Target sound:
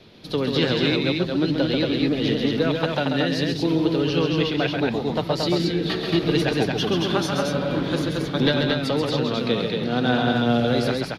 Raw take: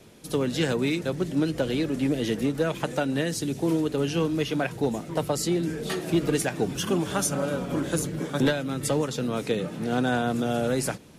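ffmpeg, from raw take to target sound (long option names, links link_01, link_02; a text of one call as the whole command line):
ffmpeg -i in.wav -af "highshelf=frequency=5800:width_type=q:width=3:gain=-12,aecho=1:1:134.1|227.4:0.562|0.708,volume=1.5dB" out.wav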